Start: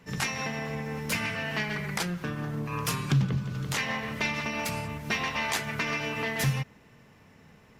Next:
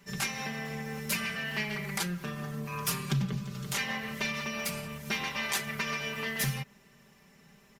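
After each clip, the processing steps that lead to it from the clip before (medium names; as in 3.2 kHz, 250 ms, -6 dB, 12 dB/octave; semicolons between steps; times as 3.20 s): treble shelf 4.1 kHz +11 dB; comb 5.1 ms, depth 77%; dynamic bell 7 kHz, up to -4 dB, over -40 dBFS, Q 0.77; trim -6.5 dB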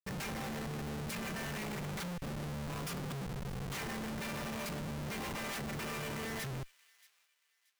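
compression 2.5:1, threshold -46 dBFS, peak gain reduction 13.5 dB; Schmitt trigger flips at -44.5 dBFS; feedback echo behind a high-pass 629 ms, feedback 31%, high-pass 2.2 kHz, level -20 dB; trim +5.5 dB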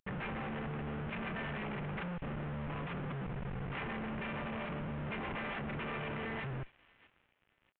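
CVSD coder 16 kbps; trim +1 dB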